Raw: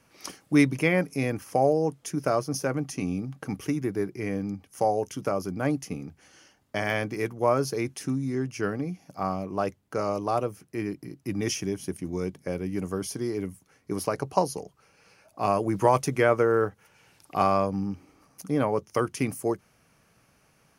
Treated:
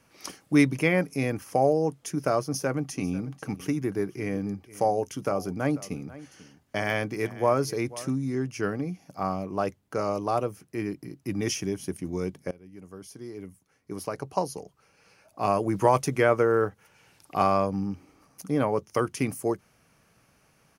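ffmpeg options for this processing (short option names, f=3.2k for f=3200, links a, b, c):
-filter_complex "[0:a]asplit=3[a][b][c];[a]afade=t=out:st=2.95:d=0.02[d];[b]aecho=1:1:492:0.126,afade=t=in:st=2.95:d=0.02,afade=t=out:st=8.08:d=0.02[e];[c]afade=t=in:st=8.08:d=0.02[f];[d][e][f]amix=inputs=3:normalize=0,asplit=2[g][h];[g]atrim=end=12.51,asetpts=PTS-STARTPTS,afade=t=out:st=12.506:d=0.004:c=hsin:silence=0.0841395[i];[h]atrim=start=12.51,asetpts=PTS-STARTPTS,afade=t=in:d=3.01:silence=0.0841395[j];[i][j]concat=n=2:v=0:a=1"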